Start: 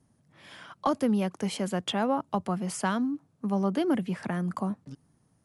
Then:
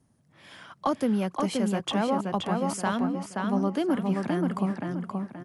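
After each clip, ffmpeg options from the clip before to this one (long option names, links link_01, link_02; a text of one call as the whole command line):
ffmpeg -i in.wav -filter_complex "[0:a]asplit=2[link_01][link_02];[link_02]adelay=526,lowpass=frequency=3900:poles=1,volume=-3dB,asplit=2[link_03][link_04];[link_04]adelay=526,lowpass=frequency=3900:poles=1,volume=0.37,asplit=2[link_05][link_06];[link_06]adelay=526,lowpass=frequency=3900:poles=1,volume=0.37,asplit=2[link_07][link_08];[link_08]adelay=526,lowpass=frequency=3900:poles=1,volume=0.37,asplit=2[link_09][link_10];[link_10]adelay=526,lowpass=frequency=3900:poles=1,volume=0.37[link_11];[link_01][link_03][link_05][link_07][link_09][link_11]amix=inputs=6:normalize=0" out.wav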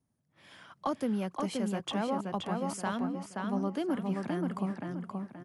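ffmpeg -i in.wav -af "agate=range=-7dB:threshold=-58dB:ratio=16:detection=peak,volume=-6dB" out.wav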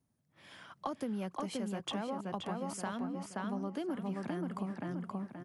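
ffmpeg -i in.wav -af "acompressor=threshold=-34dB:ratio=6" out.wav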